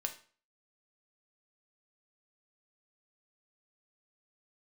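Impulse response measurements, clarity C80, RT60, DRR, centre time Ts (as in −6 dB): 16.5 dB, 0.40 s, 4.0 dB, 11 ms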